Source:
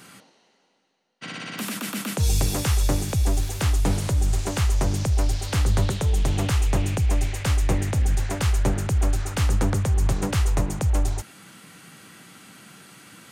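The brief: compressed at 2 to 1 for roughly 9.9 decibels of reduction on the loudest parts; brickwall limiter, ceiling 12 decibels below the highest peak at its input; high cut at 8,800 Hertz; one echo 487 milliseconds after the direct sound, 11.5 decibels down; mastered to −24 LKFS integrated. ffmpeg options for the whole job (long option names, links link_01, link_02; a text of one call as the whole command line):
ffmpeg -i in.wav -af "lowpass=8800,acompressor=threshold=-36dB:ratio=2,alimiter=level_in=8dB:limit=-24dB:level=0:latency=1,volume=-8dB,aecho=1:1:487:0.266,volume=17dB" out.wav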